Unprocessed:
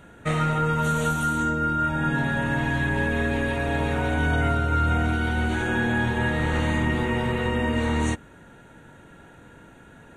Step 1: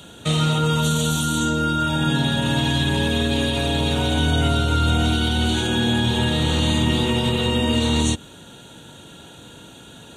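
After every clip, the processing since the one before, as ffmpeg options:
-filter_complex "[0:a]highpass=68,highshelf=f=2.6k:t=q:w=3:g=9.5,acrossover=split=340[a][b];[b]alimiter=limit=-21.5dB:level=0:latency=1:release=89[c];[a][c]amix=inputs=2:normalize=0,volume=5.5dB"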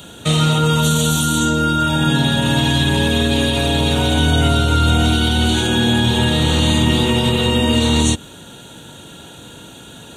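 -af "highshelf=f=11k:g=6,volume=4.5dB"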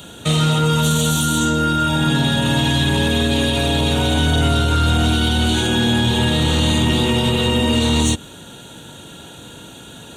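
-af "asoftclip=type=tanh:threshold=-8dB"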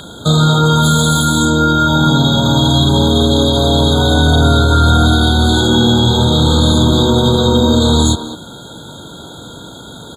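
-filter_complex "[0:a]asplit=2[a][b];[b]adelay=200,highpass=300,lowpass=3.4k,asoftclip=type=hard:threshold=-18dB,volume=-8dB[c];[a][c]amix=inputs=2:normalize=0,aeval=exprs='val(0)+0.126*sin(2*PI*2200*n/s)':c=same,afftfilt=real='re*eq(mod(floor(b*sr/1024/1600),2),0)':imag='im*eq(mod(floor(b*sr/1024/1600),2),0)':win_size=1024:overlap=0.75,volume=6dB"

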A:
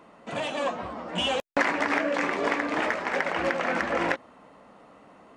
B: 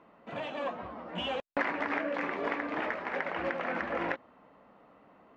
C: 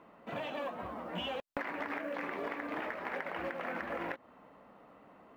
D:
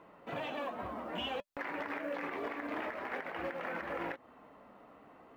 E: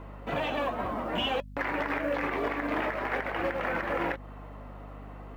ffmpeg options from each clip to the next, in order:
-af "lowpass=3k,volume=-6.5dB"
-af "acompressor=threshold=-36dB:ratio=6,acrusher=bits=9:mode=log:mix=0:aa=0.000001,volume=1dB"
-af "alimiter=level_in=5dB:limit=-24dB:level=0:latency=1:release=58,volume=-5dB,flanger=delay=2:depth=1.1:regen=-71:speed=0.53:shape=triangular,volume=5dB"
-af "aeval=exprs='val(0)+0.00251*(sin(2*PI*50*n/s)+sin(2*PI*2*50*n/s)/2+sin(2*PI*3*50*n/s)/3+sin(2*PI*4*50*n/s)/4+sin(2*PI*5*50*n/s)/5)':c=same,volume=8.5dB"

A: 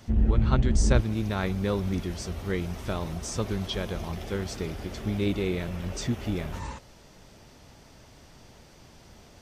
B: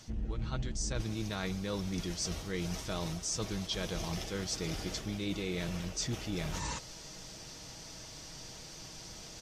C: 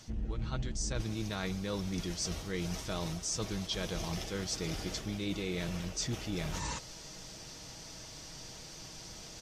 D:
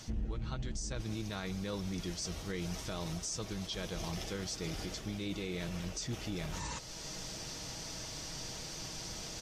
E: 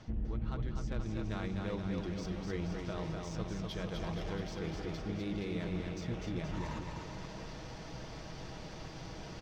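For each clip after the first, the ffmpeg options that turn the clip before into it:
-af "equalizer=f=5.8k:w=0.74:g=12,aecho=1:1:6.3:0.4,areverse,acompressor=threshold=-33dB:ratio=6,areverse"
-af anull
-af "alimiter=level_in=9.5dB:limit=-24dB:level=0:latency=1:release=403,volume=-9.5dB,volume=4.5dB"
-af "adynamicsmooth=sensitivity=4:basefreq=2.1k,aecho=1:1:250|475|677.5|859.8|1024:0.631|0.398|0.251|0.158|0.1"

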